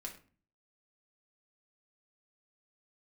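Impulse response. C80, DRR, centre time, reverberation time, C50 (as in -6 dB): 14.5 dB, -0.5 dB, 15 ms, 0.40 s, 10.0 dB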